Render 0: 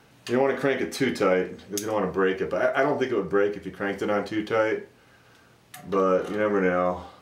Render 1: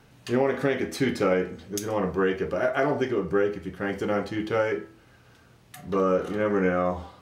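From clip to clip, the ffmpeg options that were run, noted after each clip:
-af "lowshelf=f=140:g=10,bandreject=f=164:t=h:w=4,bandreject=f=328:t=h:w=4,bandreject=f=492:t=h:w=4,bandreject=f=656:t=h:w=4,bandreject=f=820:t=h:w=4,bandreject=f=984:t=h:w=4,bandreject=f=1.148k:t=h:w=4,bandreject=f=1.312k:t=h:w=4,bandreject=f=1.476k:t=h:w=4,bandreject=f=1.64k:t=h:w=4,bandreject=f=1.804k:t=h:w=4,bandreject=f=1.968k:t=h:w=4,bandreject=f=2.132k:t=h:w=4,bandreject=f=2.296k:t=h:w=4,bandreject=f=2.46k:t=h:w=4,bandreject=f=2.624k:t=h:w=4,bandreject=f=2.788k:t=h:w=4,bandreject=f=2.952k:t=h:w=4,bandreject=f=3.116k:t=h:w=4,bandreject=f=3.28k:t=h:w=4,bandreject=f=3.444k:t=h:w=4,bandreject=f=3.608k:t=h:w=4,bandreject=f=3.772k:t=h:w=4,bandreject=f=3.936k:t=h:w=4,bandreject=f=4.1k:t=h:w=4,bandreject=f=4.264k:t=h:w=4,bandreject=f=4.428k:t=h:w=4,bandreject=f=4.592k:t=h:w=4,bandreject=f=4.756k:t=h:w=4,volume=-2dB"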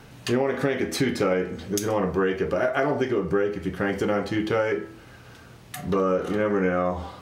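-af "acompressor=threshold=-32dB:ratio=2.5,volume=8.5dB"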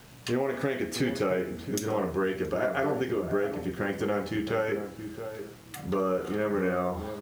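-filter_complex "[0:a]asplit=2[a][b];[b]adelay=673,lowpass=f=870:p=1,volume=-8dB,asplit=2[c][d];[d]adelay=673,lowpass=f=870:p=1,volume=0.22,asplit=2[e][f];[f]adelay=673,lowpass=f=870:p=1,volume=0.22[g];[c][e][g]amix=inputs=3:normalize=0[h];[a][h]amix=inputs=2:normalize=0,acrusher=bits=7:mix=0:aa=0.000001,volume=-5dB"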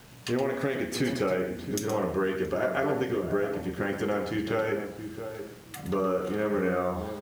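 -af "aecho=1:1:120:0.335"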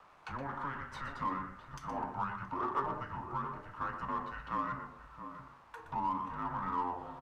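-filter_complex "[0:a]bandpass=f=1.3k:t=q:w=3.8:csg=0,afreqshift=-270,asplit=2[a][b];[b]asoftclip=type=tanh:threshold=-40dB,volume=-9dB[c];[a][c]amix=inputs=2:normalize=0,volume=1.5dB"

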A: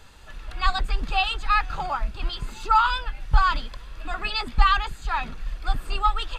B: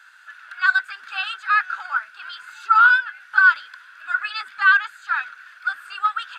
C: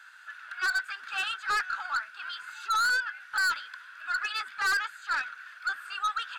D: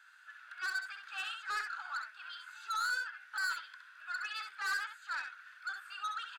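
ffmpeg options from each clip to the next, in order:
-af "highpass=f=1.5k:t=q:w=14,volume=-5dB"
-af "aeval=exprs='(tanh(12.6*val(0)+0.05)-tanh(0.05))/12.6':c=same,volume=-2dB"
-af "lowshelf=f=330:g=-11.5,aecho=1:1:66|76:0.473|0.126,volume=-9dB"

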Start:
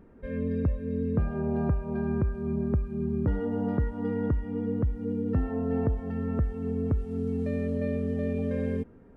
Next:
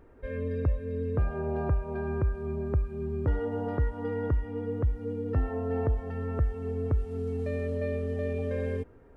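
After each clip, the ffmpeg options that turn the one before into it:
-af "equalizer=f=200:t=o:w=0.74:g=-15,volume=2dB"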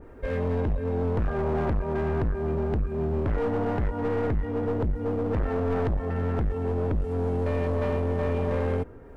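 -af "aeval=exprs='clip(val(0),-1,0.0158)':c=same,aeval=exprs='0.15*(cos(1*acos(clip(val(0)/0.15,-1,1)))-cos(1*PI/2))+0.0531*(cos(5*acos(clip(val(0)/0.15,-1,1)))-cos(5*PI/2))':c=same,adynamicequalizer=threshold=0.00251:dfrequency=2000:dqfactor=0.7:tfrequency=2000:tqfactor=0.7:attack=5:release=100:ratio=0.375:range=2:mode=cutabove:tftype=highshelf"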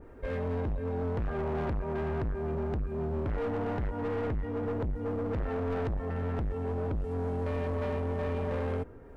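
-af "asoftclip=type=tanh:threshold=-22.5dB,volume=-3.5dB"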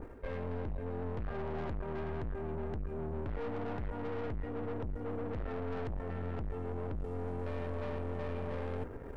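-af "areverse,acompressor=threshold=-42dB:ratio=8,areverse,aeval=exprs='(tanh(141*val(0)+0.75)-tanh(0.75))/141':c=same,volume=9dB"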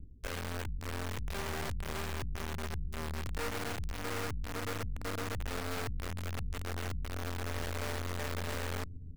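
-filter_complex "[0:a]acrossover=split=210[a][b];[a]aecho=1:1:632:0.376[c];[b]acrusher=bits=5:mix=0:aa=0.000001[d];[c][d]amix=inputs=2:normalize=0"

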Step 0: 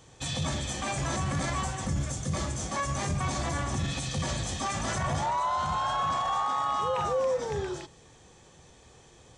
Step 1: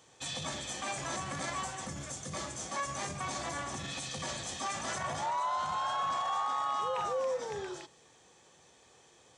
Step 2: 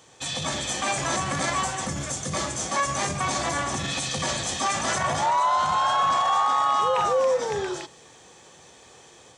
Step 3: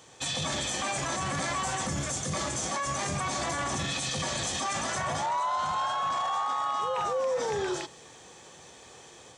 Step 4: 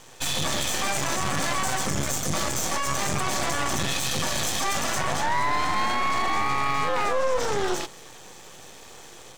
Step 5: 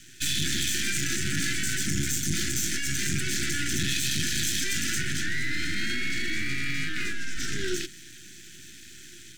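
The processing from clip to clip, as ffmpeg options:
-af "highpass=f=410:p=1,volume=-3.5dB"
-af "dynaudnorm=f=310:g=3:m=3.5dB,volume=7.5dB"
-af "alimiter=limit=-22.5dB:level=0:latency=1:release=19"
-af "aeval=exprs='max(val(0),0)':c=same,volume=9dB"
-af "asuperstop=centerf=730:order=20:qfactor=0.68"

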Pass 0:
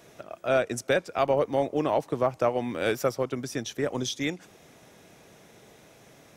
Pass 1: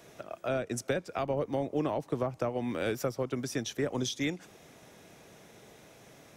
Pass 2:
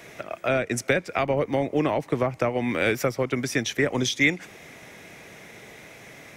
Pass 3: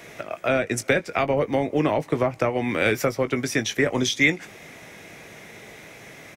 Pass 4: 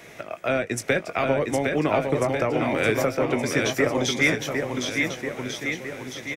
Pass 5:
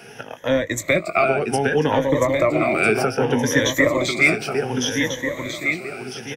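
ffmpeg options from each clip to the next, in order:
-filter_complex "[0:a]acrossover=split=320[a][b];[b]acompressor=threshold=-30dB:ratio=6[c];[a][c]amix=inputs=2:normalize=0,volume=-1dB"
-af "equalizer=f=2.1k:w=2.2:g=11,volume=7dB"
-filter_complex "[0:a]asplit=2[a][b];[b]adelay=19,volume=-11dB[c];[a][c]amix=inputs=2:normalize=0,volume=1.5dB"
-af "aecho=1:1:760|1444|2060|2614|3112:0.631|0.398|0.251|0.158|0.1,volume=-2dB"
-af "afftfilt=real='re*pow(10,16/40*sin(2*PI*(1.1*log(max(b,1)*sr/1024/100)/log(2)-(0.65)*(pts-256)/sr)))':imag='im*pow(10,16/40*sin(2*PI*(1.1*log(max(b,1)*sr/1024/100)/log(2)-(0.65)*(pts-256)/sr)))':win_size=1024:overlap=0.75,volume=1.5dB"

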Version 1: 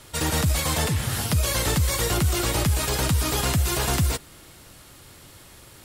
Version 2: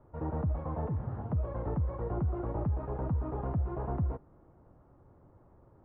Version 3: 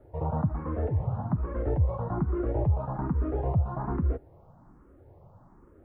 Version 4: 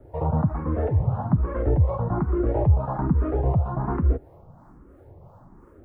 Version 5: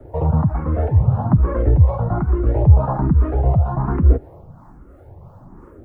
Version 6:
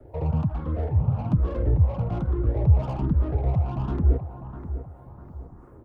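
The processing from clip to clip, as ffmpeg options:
-af "lowpass=f=1k:w=0.5412,lowpass=f=1k:w=1.3066,volume=-8.5dB"
-filter_complex "[0:a]asplit=2[a][b];[b]afreqshift=1.2[c];[a][c]amix=inputs=2:normalize=1,volume=8dB"
-filter_complex "[0:a]acrossover=split=400[a][b];[a]aeval=exprs='val(0)*(1-0.5/2+0.5/2*cos(2*PI*2.9*n/s))':c=same[c];[b]aeval=exprs='val(0)*(1-0.5/2-0.5/2*cos(2*PI*2.9*n/s))':c=same[d];[c][d]amix=inputs=2:normalize=0,volume=8dB"
-filter_complex "[0:a]acrossover=split=160|3000[a][b][c];[b]acompressor=threshold=-26dB:ratio=6[d];[a][d][c]amix=inputs=3:normalize=0,aphaser=in_gain=1:out_gain=1:delay=1.5:decay=0.32:speed=0.71:type=sinusoidal,volume=5dB"
-filter_complex "[0:a]aecho=1:1:651|1302|1953|2604:0.251|0.1|0.0402|0.0161,acrossover=split=630[a][b];[b]asoftclip=type=tanh:threshold=-32.5dB[c];[a][c]amix=inputs=2:normalize=0,volume=-7.5dB"

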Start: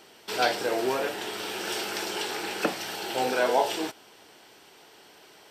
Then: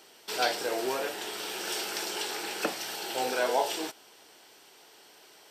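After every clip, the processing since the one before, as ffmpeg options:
-af "bass=f=250:g=-6,treble=f=4k:g=5,volume=-3.5dB"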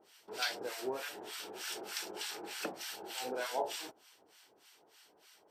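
-filter_complex "[0:a]acrossover=split=1000[a][b];[a]aeval=exprs='val(0)*(1-1/2+1/2*cos(2*PI*3.3*n/s))':c=same[c];[b]aeval=exprs='val(0)*(1-1/2-1/2*cos(2*PI*3.3*n/s))':c=same[d];[c][d]amix=inputs=2:normalize=0,volume=-4dB"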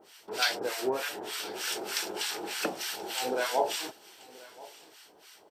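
-af "aecho=1:1:1030:0.0891,volume=8dB"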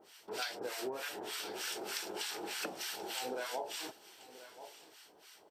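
-af "acompressor=threshold=-32dB:ratio=6,volume=-4dB"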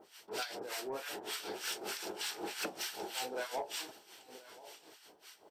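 -af "tremolo=f=5.3:d=0.68,aeval=exprs='0.0668*(cos(1*acos(clip(val(0)/0.0668,-1,1)))-cos(1*PI/2))+0.00188*(cos(5*acos(clip(val(0)/0.0668,-1,1)))-cos(5*PI/2))':c=same,asoftclip=type=tanh:threshold=-30dB,volume=2.5dB"

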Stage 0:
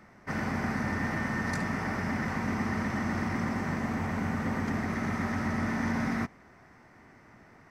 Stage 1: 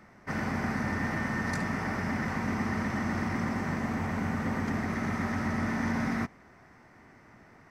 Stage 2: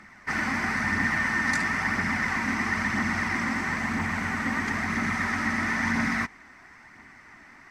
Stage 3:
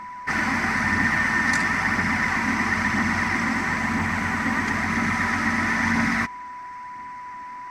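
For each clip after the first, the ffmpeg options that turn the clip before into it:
-af anull
-af "aphaser=in_gain=1:out_gain=1:delay=3.9:decay=0.32:speed=1:type=triangular,equalizer=f=125:t=o:w=1:g=-5,equalizer=f=250:t=o:w=1:g=3,equalizer=f=500:t=o:w=1:g=-7,equalizer=f=1k:t=o:w=1:g=4,equalizer=f=2k:t=o:w=1:g=9,equalizer=f=4k:t=o:w=1:g=5,equalizer=f=8k:t=o:w=1:g=8"
-af "aeval=exprs='val(0)+0.0126*sin(2*PI*990*n/s)':c=same,volume=4dB"

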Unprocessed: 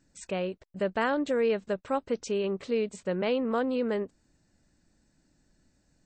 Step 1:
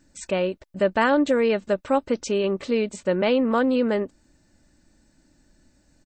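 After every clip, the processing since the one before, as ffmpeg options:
-af "aecho=1:1:3.4:0.3,volume=7dB"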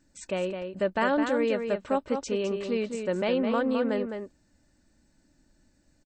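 -filter_complex "[0:a]asplit=2[a][b];[b]adelay=209.9,volume=-6dB,highshelf=f=4k:g=-4.72[c];[a][c]amix=inputs=2:normalize=0,volume=-6dB"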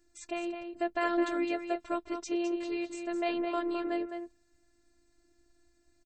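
-af "afftfilt=real='hypot(re,im)*cos(PI*b)':imag='0':win_size=512:overlap=0.75"

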